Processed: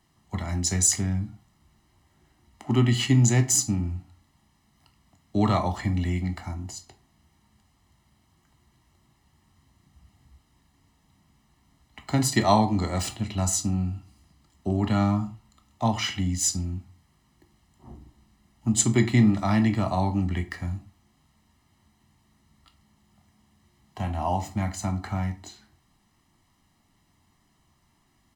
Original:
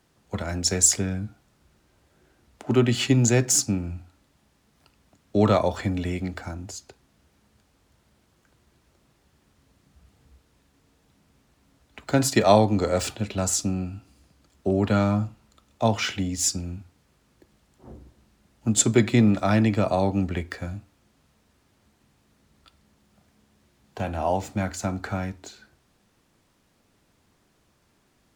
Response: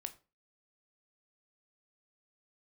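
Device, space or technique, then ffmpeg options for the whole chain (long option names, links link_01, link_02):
microphone above a desk: -filter_complex "[0:a]aecho=1:1:1:0.73[link_01];[1:a]atrim=start_sample=2205[link_02];[link_01][link_02]afir=irnorm=-1:irlink=0"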